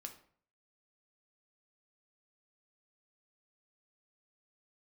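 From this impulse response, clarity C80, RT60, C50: 15.0 dB, 0.55 s, 11.0 dB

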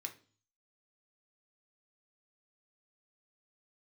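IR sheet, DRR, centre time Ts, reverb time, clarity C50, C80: 4.0 dB, 9 ms, 0.40 s, 14.0 dB, 20.0 dB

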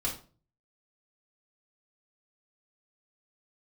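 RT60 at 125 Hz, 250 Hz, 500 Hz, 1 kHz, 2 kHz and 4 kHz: 0.65 s, 0.50 s, 0.40 s, 0.35 s, 0.30 s, 0.30 s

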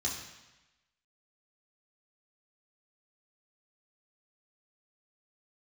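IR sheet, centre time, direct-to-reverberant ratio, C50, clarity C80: 44 ms, -4.0 dB, 4.5 dB, 6.5 dB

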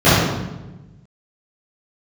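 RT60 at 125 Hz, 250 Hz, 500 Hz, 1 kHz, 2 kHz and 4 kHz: 1.7 s, 1.5 s, 1.2 s, 1.0 s, 0.85 s, 0.80 s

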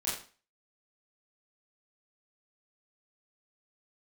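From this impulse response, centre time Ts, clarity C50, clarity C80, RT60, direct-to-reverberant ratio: 45 ms, 4.0 dB, 8.0 dB, 0.40 s, -8.5 dB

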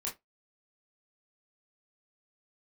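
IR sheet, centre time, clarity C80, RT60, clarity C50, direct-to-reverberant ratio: 23 ms, 24.5 dB, 0.15 s, 13.0 dB, -4.0 dB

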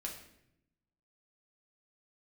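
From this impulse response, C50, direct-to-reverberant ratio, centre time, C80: 6.5 dB, -1.5 dB, 27 ms, 9.5 dB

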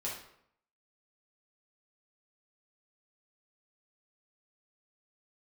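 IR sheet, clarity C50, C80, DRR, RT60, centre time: 3.5 dB, 8.0 dB, -5.5 dB, 0.70 s, 40 ms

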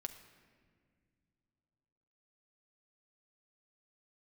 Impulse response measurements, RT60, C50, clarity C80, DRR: no single decay rate, 10.5 dB, 11.5 dB, 6.0 dB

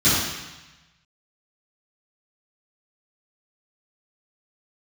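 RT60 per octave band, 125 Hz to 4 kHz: 1.4 s, 1.0 s, 0.95 s, 1.2 s, 1.2 s, 1.2 s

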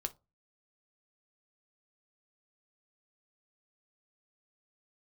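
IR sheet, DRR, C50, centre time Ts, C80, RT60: 7.5 dB, 21.0 dB, 4 ms, 30.5 dB, 0.25 s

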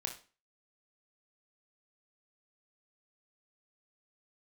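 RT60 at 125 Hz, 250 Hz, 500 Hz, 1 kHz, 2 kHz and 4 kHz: 0.35 s, 0.40 s, 0.35 s, 0.35 s, 0.35 s, 0.35 s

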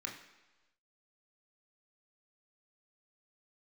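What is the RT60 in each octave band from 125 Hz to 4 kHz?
1.0 s, 1.0 s, 1.1 s, 1.1 s, 1.1 s, 1.2 s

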